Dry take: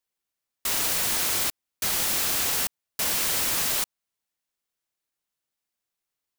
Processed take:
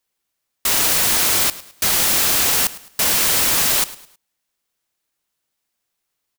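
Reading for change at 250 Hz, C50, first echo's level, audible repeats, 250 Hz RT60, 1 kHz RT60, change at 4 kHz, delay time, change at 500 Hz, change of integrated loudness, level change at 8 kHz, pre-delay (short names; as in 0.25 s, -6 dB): +8.5 dB, none, -18.0 dB, 2, none, none, +8.5 dB, 0.106 s, +8.5 dB, +8.5 dB, +8.5 dB, none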